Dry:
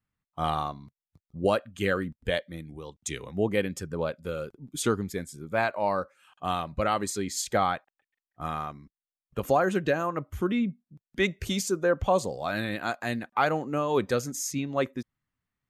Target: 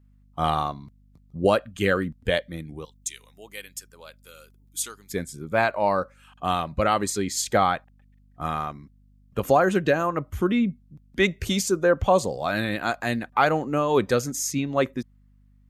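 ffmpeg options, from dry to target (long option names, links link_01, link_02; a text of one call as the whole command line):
ffmpeg -i in.wav -filter_complex "[0:a]asettb=1/sr,asplit=3[link_01][link_02][link_03];[link_01]atrim=end=2.854[link_04];[link_02]atrim=start=2.85:end=5.11,asetpts=PTS-STARTPTS,afade=type=in:duration=0.004:curve=qsin,afade=type=out:start_time=2.256:duration=0.004:curve=qsin,aderivative[link_05];[link_03]atrim=start=5.106[link_06];[link_04][link_05]acrossfade=duration=0.004:curve1=hsin:curve2=qsin[link_07];[link_07][link_06]acrossfade=duration=0.004:curve1=qsin:curve2=hsin,aeval=exprs='val(0)+0.001*(sin(2*PI*50*n/s)+sin(2*PI*2*50*n/s)/2+sin(2*PI*3*50*n/s)/3+sin(2*PI*4*50*n/s)/4+sin(2*PI*5*50*n/s)/5)':channel_layout=same,volume=4.5dB" out.wav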